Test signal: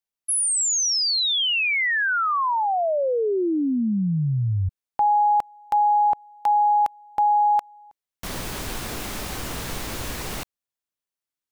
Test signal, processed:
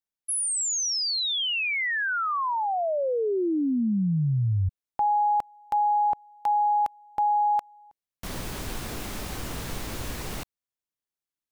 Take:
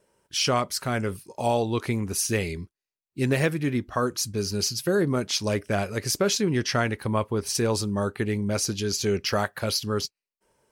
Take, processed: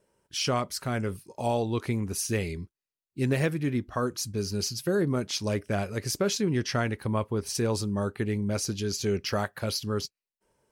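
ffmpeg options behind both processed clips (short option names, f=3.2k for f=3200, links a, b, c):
-af "lowshelf=f=390:g=4,volume=-5dB"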